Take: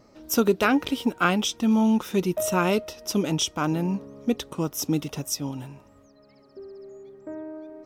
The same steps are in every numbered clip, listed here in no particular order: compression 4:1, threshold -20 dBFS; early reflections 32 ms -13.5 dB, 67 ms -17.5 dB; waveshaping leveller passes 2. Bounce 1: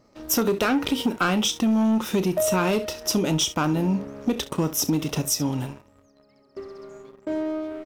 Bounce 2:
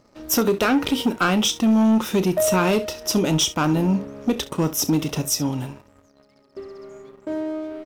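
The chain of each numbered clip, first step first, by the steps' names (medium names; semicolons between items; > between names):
early reflections > waveshaping leveller > compression; compression > early reflections > waveshaping leveller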